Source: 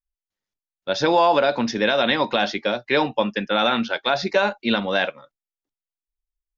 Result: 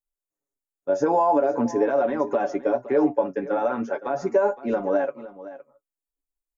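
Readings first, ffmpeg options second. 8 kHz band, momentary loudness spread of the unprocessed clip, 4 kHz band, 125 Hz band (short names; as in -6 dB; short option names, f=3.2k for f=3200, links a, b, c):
n/a, 6 LU, under -25 dB, -7.0 dB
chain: -filter_complex "[0:a]flanger=delay=4.9:depth=6:regen=51:speed=0.44:shape=sinusoidal,aecho=1:1:7.1:0.66,alimiter=limit=-14dB:level=0:latency=1:release=99,firequalizer=gain_entry='entry(140,0);entry(310,12);entry(3700,-26);entry(6900,8)':delay=0.05:min_phase=1,asplit=2[a][b];[b]aecho=0:1:515:0.158[c];[a][c]amix=inputs=2:normalize=0,volume=-4.5dB"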